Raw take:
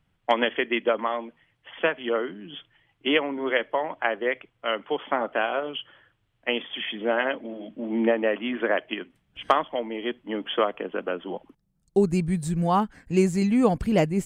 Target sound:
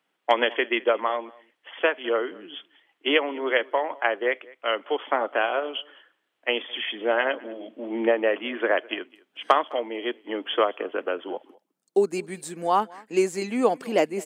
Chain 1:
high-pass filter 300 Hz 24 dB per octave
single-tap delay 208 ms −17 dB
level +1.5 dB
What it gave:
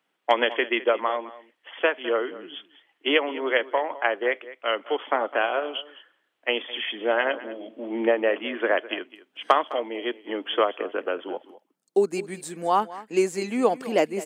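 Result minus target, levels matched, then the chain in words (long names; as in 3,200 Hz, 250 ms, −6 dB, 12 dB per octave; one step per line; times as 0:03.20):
echo-to-direct +6.5 dB
high-pass filter 300 Hz 24 dB per octave
single-tap delay 208 ms −23.5 dB
level +1.5 dB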